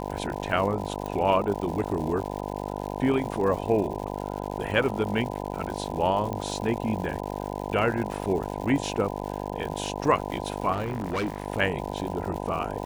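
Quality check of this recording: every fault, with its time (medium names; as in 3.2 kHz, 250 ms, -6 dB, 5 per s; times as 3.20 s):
buzz 50 Hz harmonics 20 -33 dBFS
crackle 210 per s -34 dBFS
1.06 s: pop -20 dBFS
6.33 s: pop -19 dBFS
10.72–11.46 s: clipped -24.5 dBFS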